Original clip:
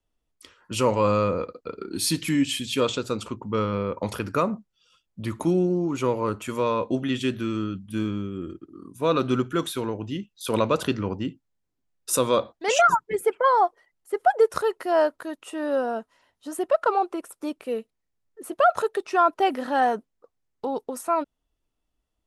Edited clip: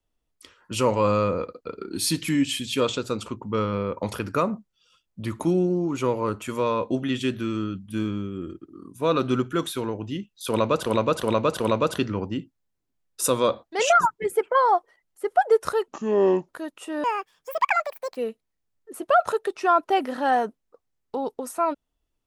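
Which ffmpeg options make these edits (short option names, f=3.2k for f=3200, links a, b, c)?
-filter_complex "[0:a]asplit=8[a][b][c][d][e][f][g][h];[a]atrim=end=10.862[i];[b]atrim=start=10.488:end=10.862[j];[c]atrim=start=10.488:end=10.862[k];[d]atrim=start=10.488:end=14.774[l];[e]atrim=start=14.77:end=15.14,asetpts=PTS-STARTPTS,asetrate=26901,aresample=44100,atrim=end_sample=26749,asetpts=PTS-STARTPTS[m];[f]atrim=start=15.136:end=15.694[n];[g]atrim=start=15.69:end=17.66,asetpts=PTS-STARTPTS,asetrate=77175,aresample=44100[o];[h]atrim=start=17.656[p];[i][j]acrossfade=d=0.004:c1=hsin:c2=hsin[q];[q][k]acrossfade=d=0.004:c1=hsin:c2=hsin[r];[r][l]acrossfade=d=0.004:c1=hsin:c2=hsin[s];[s][m]acrossfade=d=0.004:c1=hsin:c2=hsin[t];[t][n]acrossfade=d=0.004:c1=hsin:c2=hsin[u];[u][o]acrossfade=d=0.004:c1=hsin:c2=hsin[v];[v][p]acrossfade=d=0.004:c1=hsin:c2=hsin"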